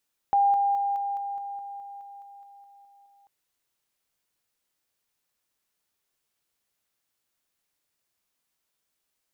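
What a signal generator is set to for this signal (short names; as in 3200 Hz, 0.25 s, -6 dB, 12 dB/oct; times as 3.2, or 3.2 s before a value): level ladder 802 Hz -17.5 dBFS, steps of -3 dB, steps 14, 0.21 s 0.00 s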